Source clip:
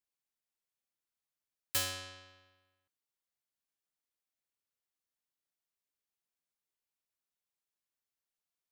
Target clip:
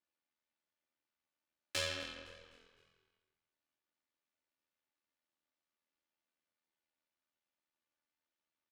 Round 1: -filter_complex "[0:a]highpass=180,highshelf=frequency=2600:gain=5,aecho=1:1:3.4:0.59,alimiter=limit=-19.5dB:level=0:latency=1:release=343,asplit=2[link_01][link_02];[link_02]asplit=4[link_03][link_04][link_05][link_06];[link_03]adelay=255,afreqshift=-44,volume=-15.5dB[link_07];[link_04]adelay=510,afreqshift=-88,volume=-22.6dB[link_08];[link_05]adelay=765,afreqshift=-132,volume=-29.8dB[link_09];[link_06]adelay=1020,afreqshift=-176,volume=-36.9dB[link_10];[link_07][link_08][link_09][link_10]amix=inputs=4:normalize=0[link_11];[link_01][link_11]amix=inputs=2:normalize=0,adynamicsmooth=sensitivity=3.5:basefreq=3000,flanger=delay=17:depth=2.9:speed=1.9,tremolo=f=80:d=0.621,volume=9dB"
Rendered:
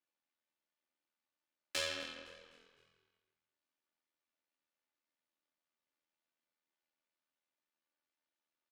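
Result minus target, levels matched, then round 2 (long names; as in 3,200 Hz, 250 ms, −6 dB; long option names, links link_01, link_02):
125 Hz band −9.0 dB
-filter_complex "[0:a]highpass=85,highshelf=frequency=2600:gain=5,aecho=1:1:3.4:0.59,alimiter=limit=-19.5dB:level=0:latency=1:release=343,asplit=2[link_01][link_02];[link_02]asplit=4[link_03][link_04][link_05][link_06];[link_03]adelay=255,afreqshift=-44,volume=-15.5dB[link_07];[link_04]adelay=510,afreqshift=-88,volume=-22.6dB[link_08];[link_05]adelay=765,afreqshift=-132,volume=-29.8dB[link_09];[link_06]adelay=1020,afreqshift=-176,volume=-36.9dB[link_10];[link_07][link_08][link_09][link_10]amix=inputs=4:normalize=0[link_11];[link_01][link_11]amix=inputs=2:normalize=0,adynamicsmooth=sensitivity=3.5:basefreq=3000,flanger=delay=17:depth=2.9:speed=1.9,tremolo=f=80:d=0.621,volume=9dB"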